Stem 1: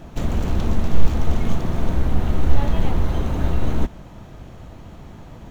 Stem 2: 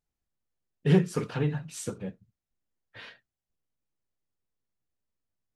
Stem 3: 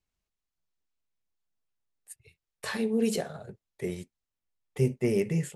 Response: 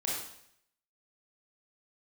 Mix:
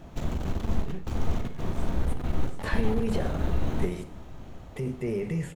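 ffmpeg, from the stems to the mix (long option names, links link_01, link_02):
-filter_complex "[0:a]aeval=exprs='clip(val(0),-1,0.0631)':channel_layout=same,volume=-9dB,asplit=3[link_01][link_02][link_03];[link_02]volume=-9dB[link_04];[link_03]volume=-18dB[link_05];[1:a]volume=-19dB,asplit=2[link_06][link_07];[link_07]volume=-4dB[link_08];[2:a]acrossover=split=2900[link_09][link_10];[link_10]acompressor=threshold=-52dB:ratio=4:attack=1:release=60[link_11];[link_09][link_11]amix=inputs=2:normalize=0,alimiter=level_in=1.5dB:limit=-24dB:level=0:latency=1:release=32,volume=-1.5dB,volume=2dB,asplit=2[link_12][link_13];[link_13]volume=-16dB[link_14];[3:a]atrim=start_sample=2205[link_15];[link_04][link_14]amix=inputs=2:normalize=0[link_16];[link_16][link_15]afir=irnorm=-1:irlink=0[link_17];[link_05][link_08]amix=inputs=2:normalize=0,aecho=0:1:732:1[link_18];[link_01][link_06][link_12][link_17][link_18]amix=inputs=5:normalize=0"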